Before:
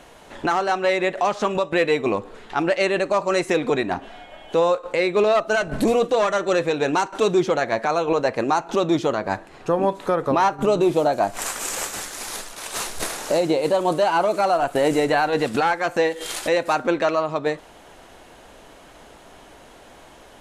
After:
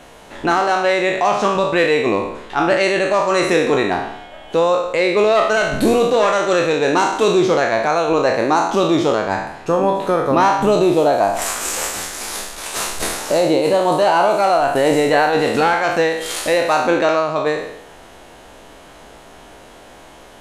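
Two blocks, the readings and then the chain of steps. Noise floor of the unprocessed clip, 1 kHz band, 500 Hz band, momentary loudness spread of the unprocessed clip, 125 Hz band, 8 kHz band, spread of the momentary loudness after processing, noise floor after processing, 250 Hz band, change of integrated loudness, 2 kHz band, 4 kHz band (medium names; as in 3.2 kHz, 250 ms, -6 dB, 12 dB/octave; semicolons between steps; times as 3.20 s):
-47 dBFS, +5.5 dB, +5.0 dB, 9 LU, +4.5 dB, +5.5 dB, 8 LU, -42 dBFS, +4.5 dB, +5.0 dB, +6.0 dB, +6.0 dB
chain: spectral sustain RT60 0.82 s; trim +2.5 dB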